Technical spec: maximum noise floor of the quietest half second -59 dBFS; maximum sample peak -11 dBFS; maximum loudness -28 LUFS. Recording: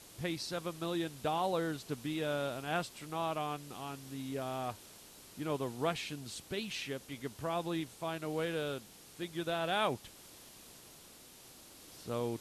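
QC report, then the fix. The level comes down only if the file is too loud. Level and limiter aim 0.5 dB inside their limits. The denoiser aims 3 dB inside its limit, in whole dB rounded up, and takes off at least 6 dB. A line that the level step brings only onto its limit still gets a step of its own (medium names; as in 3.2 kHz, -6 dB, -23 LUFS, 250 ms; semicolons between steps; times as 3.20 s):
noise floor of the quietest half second -56 dBFS: fail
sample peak -20.0 dBFS: pass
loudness -37.5 LUFS: pass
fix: noise reduction 6 dB, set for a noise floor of -56 dBFS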